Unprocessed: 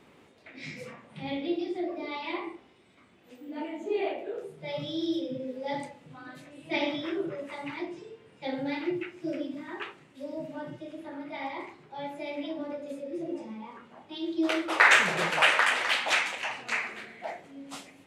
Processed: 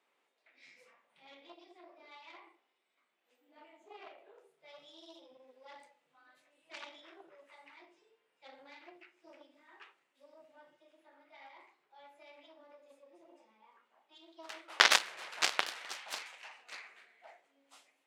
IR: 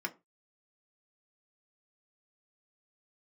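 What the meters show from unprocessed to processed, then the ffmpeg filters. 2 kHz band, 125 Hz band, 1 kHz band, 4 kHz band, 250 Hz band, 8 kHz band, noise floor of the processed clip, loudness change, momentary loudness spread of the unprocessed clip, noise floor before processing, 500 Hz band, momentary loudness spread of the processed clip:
−10.5 dB, below −25 dB, −10.5 dB, −4.0 dB, −27.5 dB, −1.0 dB, −80 dBFS, −3.0 dB, 20 LU, −58 dBFS, −17.5 dB, 24 LU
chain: -af "aeval=exprs='0.501*(cos(1*acos(clip(val(0)/0.501,-1,1)))-cos(1*PI/2))+0.2*(cos(2*acos(clip(val(0)/0.501,-1,1)))-cos(2*PI/2))+0.178*(cos(3*acos(clip(val(0)/0.501,-1,1)))-cos(3*PI/2))+0.00447*(cos(7*acos(clip(val(0)/0.501,-1,1)))-cos(7*PI/2))+0.00398*(cos(8*acos(clip(val(0)/0.501,-1,1)))-cos(8*PI/2))':channel_layout=same,highpass=640,volume=1dB"

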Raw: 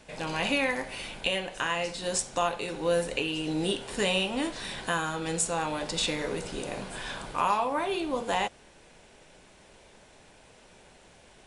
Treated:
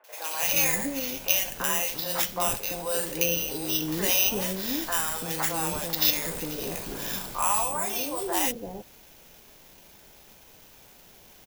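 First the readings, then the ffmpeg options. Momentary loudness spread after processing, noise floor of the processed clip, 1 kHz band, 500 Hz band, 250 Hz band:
10 LU, −53 dBFS, −1.5 dB, −2.5 dB, −0.5 dB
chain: -filter_complex "[0:a]acrusher=samples=5:mix=1:aa=0.000001,aemphasis=mode=production:type=50kf,acrossover=split=510|1600[link_01][link_02][link_03];[link_03]adelay=40[link_04];[link_01]adelay=340[link_05];[link_05][link_02][link_04]amix=inputs=3:normalize=0"

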